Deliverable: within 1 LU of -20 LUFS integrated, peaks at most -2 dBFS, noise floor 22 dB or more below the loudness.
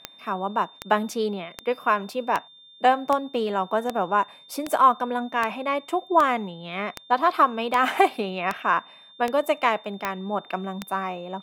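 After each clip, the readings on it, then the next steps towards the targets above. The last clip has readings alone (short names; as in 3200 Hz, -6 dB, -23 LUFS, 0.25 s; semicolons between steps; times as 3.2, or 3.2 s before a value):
clicks 15; steady tone 3600 Hz; tone level -48 dBFS; loudness -24.5 LUFS; peak -5.5 dBFS; loudness target -20.0 LUFS
-> de-click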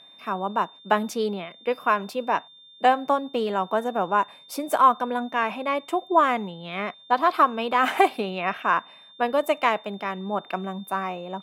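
clicks 0; steady tone 3600 Hz; tone level -48 dBFS
-> notch 3600 Hz, Q 30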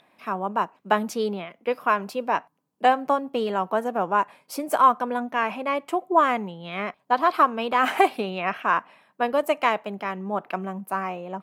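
steady tone none; loudness -24.5 LUFS; peak -5.5 dBFS; loudness target -20.0 LUFS
-> gain +4.5 dB; limiter -2 dBFS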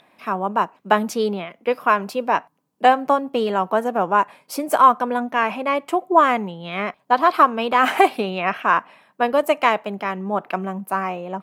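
loudness -20.0 LUFS; peak -2.0 dBFS; noise floor -63 dBFS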